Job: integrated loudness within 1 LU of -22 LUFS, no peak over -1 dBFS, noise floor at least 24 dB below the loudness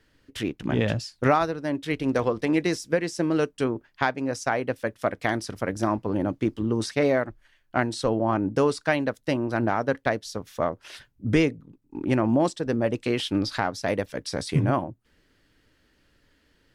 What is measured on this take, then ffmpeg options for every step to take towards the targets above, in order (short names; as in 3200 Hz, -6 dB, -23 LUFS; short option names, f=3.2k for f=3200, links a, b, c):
loudness -26.0 LUFS; peak -7.0 dBFS; loudness target -22.0 LUFS
-> -af "volume=4dB"